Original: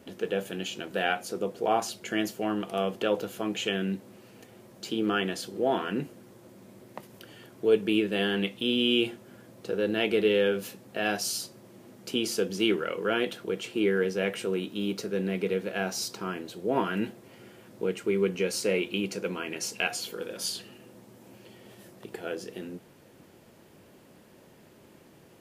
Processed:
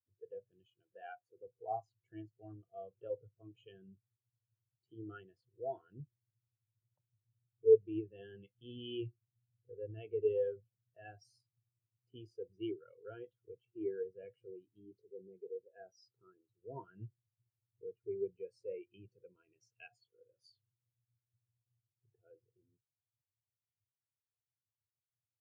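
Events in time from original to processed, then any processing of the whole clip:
0.64–1.47 HPF 99 Hz 6 dB/oct
14.79–16.5 formant sharpening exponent 1.5
whole clip: resonant low shelf 150 Hz +9 dB, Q 3; spectral expander 2.5:1; gain -4 dB

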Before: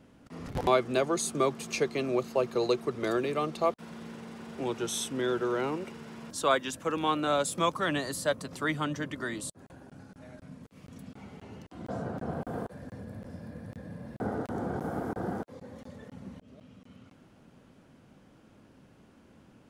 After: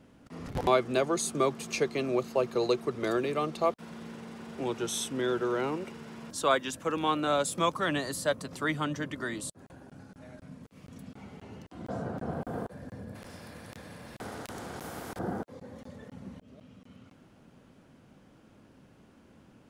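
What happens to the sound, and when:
13.15–15.19 spectral compressor 2:1

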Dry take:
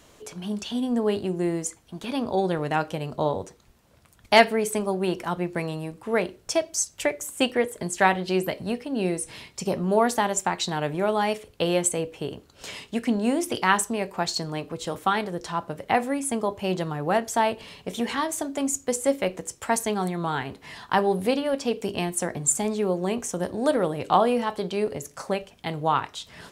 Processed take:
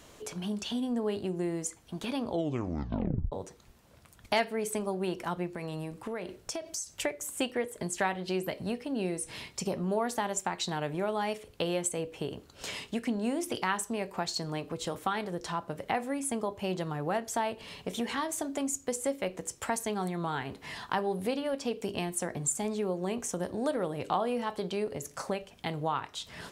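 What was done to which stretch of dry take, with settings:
2.25 tape stop 1.07 s
5.49–6.91 compressor 5:1, threshold -31 dBFS
whole clip: compressor 2:1, threshold -34 dBFS

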